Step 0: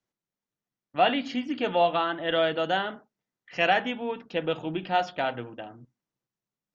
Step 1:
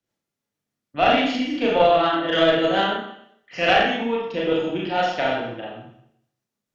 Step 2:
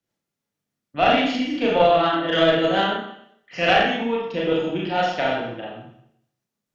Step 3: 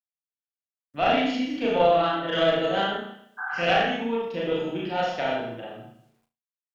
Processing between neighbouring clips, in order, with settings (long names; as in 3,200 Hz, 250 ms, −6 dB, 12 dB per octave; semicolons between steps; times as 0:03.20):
rotating-speaker cabinet horn 6.7 Hz; four-comb reverb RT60 0.7 s, combs from 27 ms, DRR −4.5 dB; harmonic generator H 2 −13 dB, 6 −43 dB, 8 −43 dB, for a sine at −8 dBFS; level +4 dB
parametric band 170 Hz +4 dB 0.33 octaves
healed spectral selection 0:03.41–0:03.63, 750–1,700 Hz after; bit reduction 11 bits; on a send: flutter between parallel walls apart 6 metres, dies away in 0.27 s; on the sum: level −5.5 dB